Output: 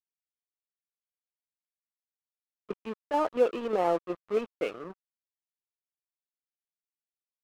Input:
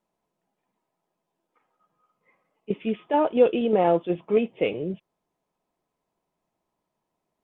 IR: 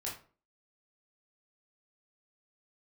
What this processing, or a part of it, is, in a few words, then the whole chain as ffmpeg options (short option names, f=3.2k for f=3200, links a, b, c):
pocket radio on a weak battery: -af "highpass=280,lowpass=3.1k,aeval=exprs='sgn(val(0))*max(abs(val(0))-0.0168,0)':c=same,equalizer=f=1.2k:t=o:w=0.45:g=8,volume=-5dB"